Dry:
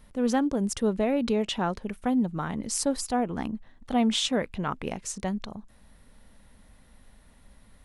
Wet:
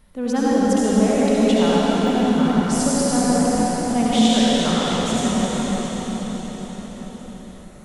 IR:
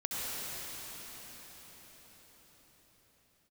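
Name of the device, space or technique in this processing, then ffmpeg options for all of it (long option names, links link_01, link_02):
cathedral: -filter_complex "[1:a]atrim=start_sample=2205[link_01];[0:a][link_01]afir=irnorm=-1:irlink=0,asettb=1/sr,asplit=3[link_02][link_03][link_04];[link_02]atrim=end=2.034[link_05];[link_03]atrim=start=2.03:end=2.65,asetpts=PTS-STARTPTS,afade=type=in:duration=0.004:curve=qsin,afade=type=out:start_time=0.616:duration=0.004:curve=qsin,deesser=0.8[link_06];[link_04]atrim=start=2.646[link_07];[link_05][link_06]acrossfade=duration=0.004:curve1=hsin:curve2=qsin[link_08];[link_08][link_07]acrossfade=duration=0.004:curve1=qsin:curve2=hsin,volume=2.5dB"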